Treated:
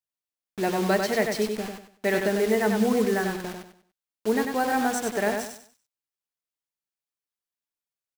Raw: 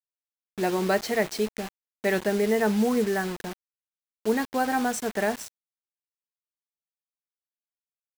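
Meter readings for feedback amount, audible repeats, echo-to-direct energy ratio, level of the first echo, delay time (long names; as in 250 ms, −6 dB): 30%, 3, −4.5 dB, −5.0 dB, 96 ms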